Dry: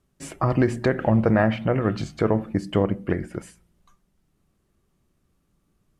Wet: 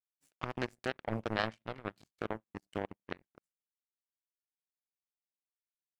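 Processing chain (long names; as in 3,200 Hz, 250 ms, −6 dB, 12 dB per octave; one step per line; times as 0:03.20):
high-shelf EQ 2,300 Hz +11 dB
power curve on the samples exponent 3
level −7 dB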